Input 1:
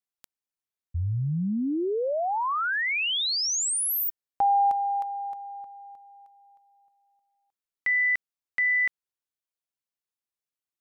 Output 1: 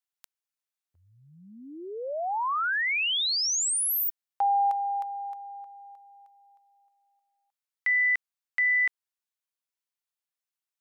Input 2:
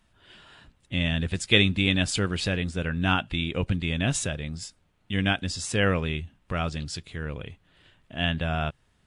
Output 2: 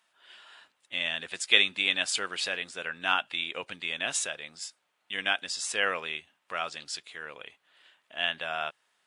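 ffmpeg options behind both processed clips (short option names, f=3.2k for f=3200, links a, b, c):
-af "highpass=730"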